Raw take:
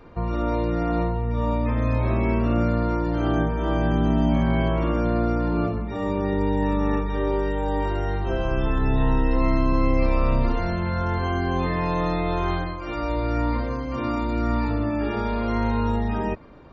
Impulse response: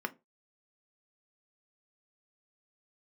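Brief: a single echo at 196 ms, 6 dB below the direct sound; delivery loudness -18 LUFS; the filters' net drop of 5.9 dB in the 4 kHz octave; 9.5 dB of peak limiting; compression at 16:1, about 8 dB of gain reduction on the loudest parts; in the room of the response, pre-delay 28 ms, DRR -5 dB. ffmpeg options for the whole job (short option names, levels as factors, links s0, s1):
-filter_complex "[0:a]equalizer=f=4000:t=o:g=-8,acompressor=threshold=0.0708:ratio=16,alimiter=level_in=1.26:limit=0.0631:level=0:latency=1,volume=0.794,aecho=1:1:196:0.501,asplit=2[s0][s1];[1:a]atrim=start_sample=2205,adelay=28[s2];[s1][s2]afir=irnorm=-1:irlink=0,volume=1.12[s3];[s0][s3]amix=inputs=2:normalize=0,volume=3.35"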